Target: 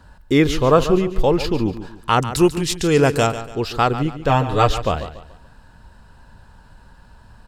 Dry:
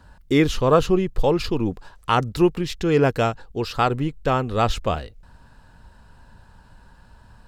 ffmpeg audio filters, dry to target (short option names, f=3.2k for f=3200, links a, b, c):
-filter_complex "[0:a]asettb=1/sr,asplit=3[a][b][c];[a]atrim=end=2.214[d];[b]atrim=start=2.21:end=3.27,asetpts=PTS-STARTPTS,afade=t=in:d=0.004:c=qsin,afade=t=out:st=1.056:d=0.004:c=qsin,equalizer=f=8.8k:t=o:w=1.5:g=14.5[e];[c]atrim=start=3.266[f];[d][e]acrossfade=d=0.004:c1=hsin:c2=qsin[g];[g][f]acrossfade=d=0.004:c1=qsin:c2=hsin,asettb=1/sr,asplit=3[h][i][j];[h]atrim=end=4.294[k];[i]atrim=start=4.29:end=4.69,asetpts=PTS-STARTPTS,afade=t=in:d=0.004:c=qsin,afade=t=out:st=0.396:d=0.004:c=qsin,aecho=1:1:6.6:0.91,atrim=end_sample=17640[l];[j]atrim=start=4.686[m];[k][l]acrossfade=d=0.004:c1=hsin:c2=qsin[n];[n][m]acrossfade=d=0.004:c1=qsin:c2=hsin,aecho=1:1:143|286|429|572:0.237|0.083|0.029|0.0102,volume=2.5dB"